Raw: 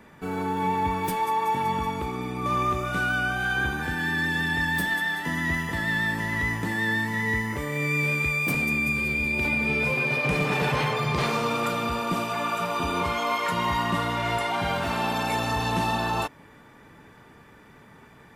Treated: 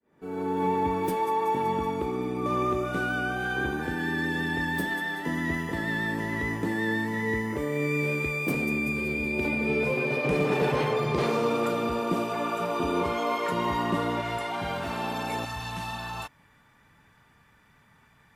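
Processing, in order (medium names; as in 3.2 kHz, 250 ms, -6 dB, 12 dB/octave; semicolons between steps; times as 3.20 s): fade-in on the opening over 0.63 s; peaking EQ 380 Hz +11.5 dB 1.7 oct, from 14.21 s +3.5 dB, from 15.45 s -11 dB; trim -6 dB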